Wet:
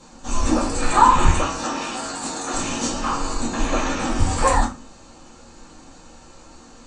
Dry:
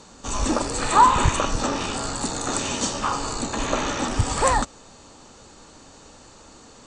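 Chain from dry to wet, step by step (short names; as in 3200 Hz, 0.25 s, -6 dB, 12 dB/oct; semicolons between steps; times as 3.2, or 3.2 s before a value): 1.44–2.54 HPF 390 Hz 6 dB/oct; reverb RT60 0.35 s, pre-delay 4 ms, DRR -6.5 dB; gain -6.5 dB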